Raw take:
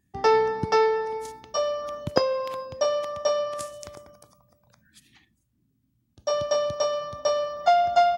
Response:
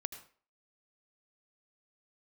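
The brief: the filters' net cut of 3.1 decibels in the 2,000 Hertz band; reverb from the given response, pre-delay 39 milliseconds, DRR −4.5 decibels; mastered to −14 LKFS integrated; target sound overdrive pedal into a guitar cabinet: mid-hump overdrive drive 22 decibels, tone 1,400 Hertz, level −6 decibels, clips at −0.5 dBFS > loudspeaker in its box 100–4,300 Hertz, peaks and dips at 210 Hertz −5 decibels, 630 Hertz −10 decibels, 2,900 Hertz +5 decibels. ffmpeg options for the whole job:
-filter_complex "[0:a]equalizer=frequency=2000:width_type=o:gain=-4.5,asplit=2[link_01][link_02];[1:a]atrim=start_sample=2205,adelay=39[link_03];[link_02][link_03]afir=irnorm=-1:irlink=0,volume=5.5dB[link_04];[link_01][link_04]amix=inputs=2:normalize=0,asplit=2[link_05][link_06];[link_06]highpass=frequency=720:poles=1,volume=22dB,asoftclip=type=tanh:threshold=-0.5dB[link_07];[link_05][link_07]amix=inputs=2:normalize=0,lowpass=frequency=1400:poles=1,volume=-6dB,highpass=100,equalizer=frequency=210:width_type=q:width=4:gain=-5,equalizer=frequency=630:width_type=q:width=4:gain=-10,equalizer=frequency=2900:width_type=q:width=4:gain=5,lowpass=frequency=4300:width=0.5412,lowpass=frequency=4300:width=1.3066,volume=1.5dB"

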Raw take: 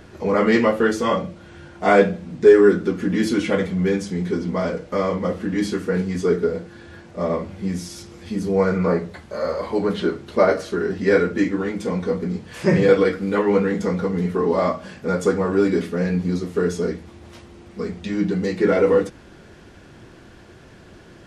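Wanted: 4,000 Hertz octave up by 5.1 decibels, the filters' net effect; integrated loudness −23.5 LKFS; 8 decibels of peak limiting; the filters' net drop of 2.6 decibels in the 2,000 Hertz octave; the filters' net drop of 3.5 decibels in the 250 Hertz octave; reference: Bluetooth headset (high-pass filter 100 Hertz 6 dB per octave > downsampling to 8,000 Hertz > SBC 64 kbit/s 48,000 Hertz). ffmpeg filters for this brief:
ffmpeg -i in.wav -af "equalizer=frequency=250:width_type=o:gain=-4,equalizer=frequency=2000:width_type=o:gain=-5,equalizer=frequency=4000:width_type=o:gain=8,alimiter=limit=-11.5dB:level=0:latency=1,highpass=frequency=100:poles=1,aresample=8000,aresample=44100,volume=1dB" -ar 48000 -c:a sbc -b:a 64k out.sbc

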